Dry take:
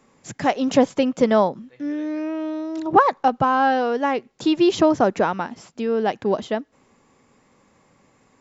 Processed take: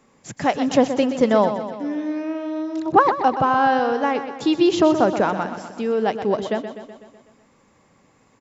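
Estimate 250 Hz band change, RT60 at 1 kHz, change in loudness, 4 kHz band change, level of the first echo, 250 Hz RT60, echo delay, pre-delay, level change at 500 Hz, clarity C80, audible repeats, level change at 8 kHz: +0.5 dB, no reverb, +0.5 dB, +0.5 dB, -10.0 dB, no reverb, 125 ms, no reverb, +0.5 dB, no reverb, 6, no reading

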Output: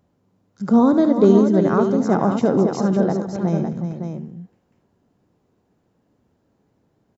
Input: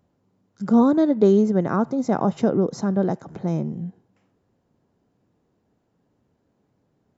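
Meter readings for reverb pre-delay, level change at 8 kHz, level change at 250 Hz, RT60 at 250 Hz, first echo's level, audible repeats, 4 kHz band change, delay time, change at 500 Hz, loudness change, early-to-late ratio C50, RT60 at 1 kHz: no reverb, no reading, +3.5 dB, no reverb, -10.5 dB, 4, +3.5 dB, 71 ms, +3.5 dB, +3.0 dB, no reverb, no reverb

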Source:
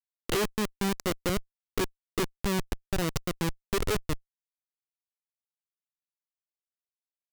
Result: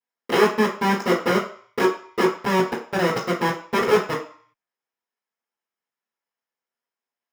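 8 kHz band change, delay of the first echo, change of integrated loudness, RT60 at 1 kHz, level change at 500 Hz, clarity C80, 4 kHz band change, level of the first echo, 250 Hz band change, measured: -1.0 dB, no echo, +9.5 dB, 0.55 s, +12.0 dB, 12.0 dB, +5.0 dB, no echo, +8.0 dB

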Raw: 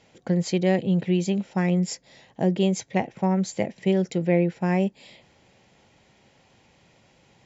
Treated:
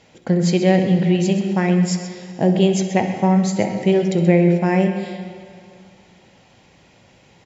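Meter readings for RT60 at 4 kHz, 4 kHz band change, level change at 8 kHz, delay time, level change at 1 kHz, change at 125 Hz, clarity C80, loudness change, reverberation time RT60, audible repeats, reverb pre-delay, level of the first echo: 2.1 s, +6.5 dB, no reading, 65 ms, +7.5 dB, +7.0 dB, 7.0 dB, +6.5 dB, 2.3 s, 2, 4 ms, -14.5 dB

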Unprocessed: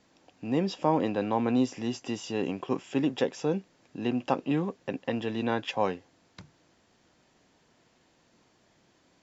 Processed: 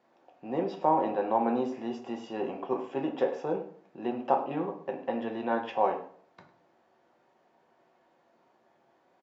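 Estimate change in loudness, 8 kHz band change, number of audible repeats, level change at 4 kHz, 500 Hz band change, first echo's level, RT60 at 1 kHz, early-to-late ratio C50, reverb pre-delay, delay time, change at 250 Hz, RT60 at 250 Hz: -1.0 dB, no reading, 1, -10.0 dB, +0.5 dB, -16.0 dB, 0.50 s, 9.0 dB, 3 ms, 103 ms, -5.0 dB, 0.60 s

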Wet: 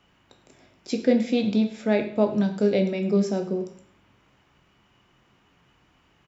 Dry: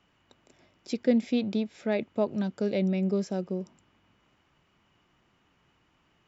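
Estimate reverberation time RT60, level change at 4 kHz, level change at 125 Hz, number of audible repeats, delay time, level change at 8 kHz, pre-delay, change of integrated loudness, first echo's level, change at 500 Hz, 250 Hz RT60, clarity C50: 0.55 s, +5.5 dB, +4.0 dB, 2, 104 ms, no reading, 6 ms, +5.0 dB, -17.5 dB, +6.0 dB, 0.50 s, 9.5 dB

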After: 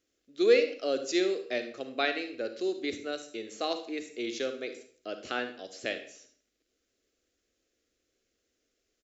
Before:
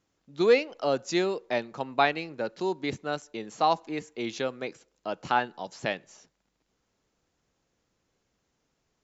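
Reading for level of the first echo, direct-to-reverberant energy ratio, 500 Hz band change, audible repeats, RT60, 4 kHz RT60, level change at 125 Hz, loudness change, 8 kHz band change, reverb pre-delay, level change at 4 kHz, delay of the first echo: -15.0 dB, 8.5 dB, -1.5 dB, 1, 0.50 s, 0.45 s, -16.0 dB, -2.5 dB, no reading, 34 ms, 0.0 dB, 73 ms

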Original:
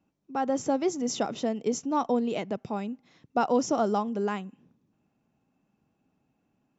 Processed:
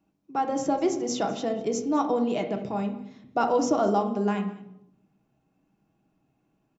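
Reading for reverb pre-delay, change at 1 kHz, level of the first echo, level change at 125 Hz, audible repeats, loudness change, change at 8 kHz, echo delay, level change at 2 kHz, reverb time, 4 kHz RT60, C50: 3 ms, +2.5 dB, -20.5 dB, +4.5 dB, 1, +2.0 dB, no reading, 203 ms, +1.5 dB, 0.80 s, 0.55 s, 9.0 dB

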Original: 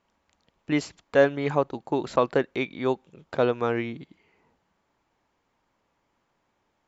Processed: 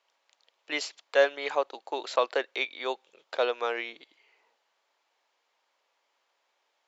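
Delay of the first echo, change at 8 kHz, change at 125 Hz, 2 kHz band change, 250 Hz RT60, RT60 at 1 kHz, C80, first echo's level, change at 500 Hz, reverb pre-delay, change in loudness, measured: no echo, no reading, under -35 dB, +0.5 dB, no reverb, no reverb, no reverb, no echo, -4.0 dB, no reverb, -4.0 dB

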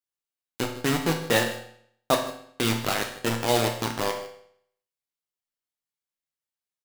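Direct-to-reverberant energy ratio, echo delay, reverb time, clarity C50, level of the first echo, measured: 2.0 dB, 154 ms, 0.65 s, 7.0 dB, -17.0 dB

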